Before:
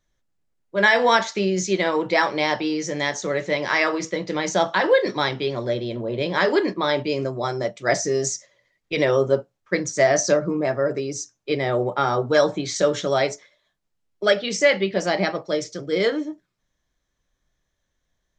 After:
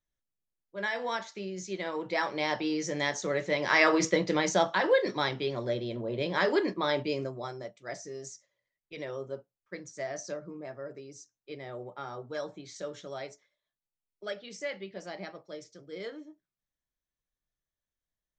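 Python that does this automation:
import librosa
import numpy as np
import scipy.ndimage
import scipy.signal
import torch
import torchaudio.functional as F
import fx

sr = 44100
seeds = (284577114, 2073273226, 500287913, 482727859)

y = fx.gain(x, sr, db=fx.line((1.54, -16.0), (2.75, -6.0), (3.56, -6.0), (4.05, 1.5), (4.75, -7.0), (7.1, -7.0), (7.84, -19.0)))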